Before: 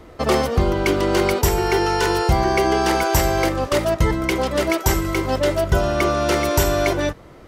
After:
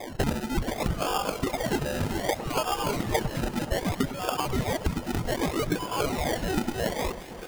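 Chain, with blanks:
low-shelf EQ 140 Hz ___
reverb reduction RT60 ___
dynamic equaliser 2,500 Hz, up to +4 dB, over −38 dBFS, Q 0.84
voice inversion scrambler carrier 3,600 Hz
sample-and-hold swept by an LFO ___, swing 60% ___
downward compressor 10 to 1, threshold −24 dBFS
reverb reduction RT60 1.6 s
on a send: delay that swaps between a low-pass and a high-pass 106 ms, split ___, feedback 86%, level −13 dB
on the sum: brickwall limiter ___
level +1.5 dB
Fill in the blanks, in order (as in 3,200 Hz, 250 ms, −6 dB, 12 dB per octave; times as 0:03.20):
+7.5 dB, 0.67 s, 31×, 0.64 Hz, 1,600 Hz, −15 dBFS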